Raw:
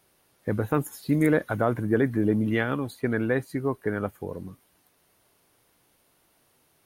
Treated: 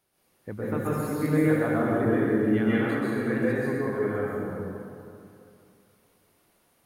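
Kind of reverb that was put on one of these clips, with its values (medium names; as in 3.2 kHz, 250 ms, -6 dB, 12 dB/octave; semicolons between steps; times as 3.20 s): plate-style reverb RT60 2.6 s, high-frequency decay 0.6×, pre-delay 115 ms, DRR -9.5 dB; trim -10 dB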